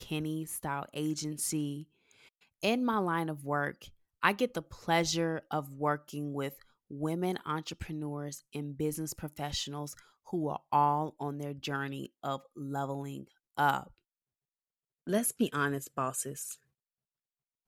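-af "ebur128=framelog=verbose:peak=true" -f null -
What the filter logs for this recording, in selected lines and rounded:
Integrated loudness:
  I:         -34.0 LUFS
  Threshold: -44.4 LUFS
Loudness range:
  LRA:         4.8 LU
  Threshold: -54.6 LUFS
  LRA low:   -37.1 LUFS
  LRA high:  -32.4 LUFS
True peak:
  Peak:       -9.8 dBFS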